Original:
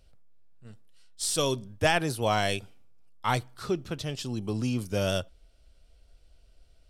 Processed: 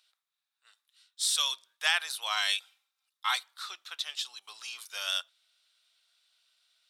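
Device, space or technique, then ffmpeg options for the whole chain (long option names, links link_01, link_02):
headphones lying on a table: -filter_complex "[0:a]highpass=frequency=1100:width=0.5412,highpass=frequency=1100:width=1.3066,equalizer=frequency=3700:width_type=o:width=0.27:gain=11,asettb=1/sr,asplit=3[link_01][link_02][link_03];[link_01]atrim=end=2.364[link_04];[link_02]atrim=start=2.36:end=3.47,asetpts=PTS-STARTPTS,afade=type=in:duration=0.004:curve=qsin,afade=type=out:start_time=1.106:duration=0.004:curve=qsin,aecho=1:1:3.8:0.55,atrim=end_sample=48951[link_05];[link_03]atrim=start=3.466[link_06];[link_04][link_05]acrossfade=duration=0.004:curve1=hsin:curve2=qsin[link_07];[link_07][link_06]acrossfade=duration=0.004:curve1=qsin:curve2=hsin"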